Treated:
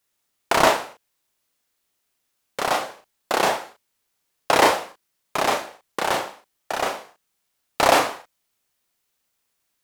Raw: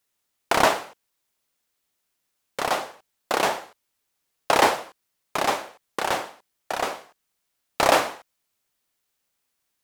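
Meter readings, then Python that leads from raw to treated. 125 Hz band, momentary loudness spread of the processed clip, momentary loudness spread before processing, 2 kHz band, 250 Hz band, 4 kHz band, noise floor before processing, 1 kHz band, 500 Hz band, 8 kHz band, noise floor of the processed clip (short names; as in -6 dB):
+2.5 dB, 19 LU, 16 LU, +2.0 dB, +2.5 dB, +2.5 dB, -77 dBFS, +2.0 dB, +2.5 dB, +2.5 dB, -75 dBFS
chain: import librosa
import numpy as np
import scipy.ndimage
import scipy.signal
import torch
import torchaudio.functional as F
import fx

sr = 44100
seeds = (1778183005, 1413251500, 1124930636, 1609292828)

y = fx.doubler(x, sr, ms=36.0, db=-4.5)
y = y * librosa.db_to_amplitude(1.0)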